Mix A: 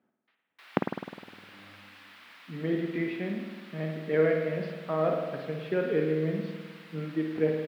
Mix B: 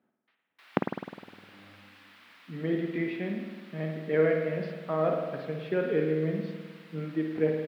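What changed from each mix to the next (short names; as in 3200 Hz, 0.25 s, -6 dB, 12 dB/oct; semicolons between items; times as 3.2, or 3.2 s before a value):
background -3.5 dB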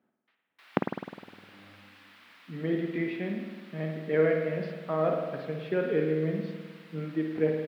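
none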